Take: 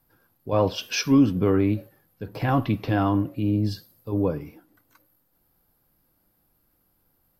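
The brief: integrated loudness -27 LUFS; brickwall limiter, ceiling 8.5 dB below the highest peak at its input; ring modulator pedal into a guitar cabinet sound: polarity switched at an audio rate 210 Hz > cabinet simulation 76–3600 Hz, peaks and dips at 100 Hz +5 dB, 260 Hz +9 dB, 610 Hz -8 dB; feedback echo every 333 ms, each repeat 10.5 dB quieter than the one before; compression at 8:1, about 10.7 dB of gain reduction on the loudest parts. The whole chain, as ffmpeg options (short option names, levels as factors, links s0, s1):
-af "acompressor=threshold=0.0631:ratio=8,alimiter=limit=0.0668:level=0:latency=1,aecho=1:1:333|666|999:0.299|0.0896|0.0269,aeval=exprs='val(0)*sgn(sin(2*PI*210*n/s))':c=same,highpass=76,equalizer=f=100:t=q:w=4:g=5,equalizer=f=260:t=q:w=4:g=9,equalizer=f=610:t=q:w=4:g=-8,lowpass=f=3600:w=0.5412,lowpass=f=3600:w=1.3066,volume=2.24"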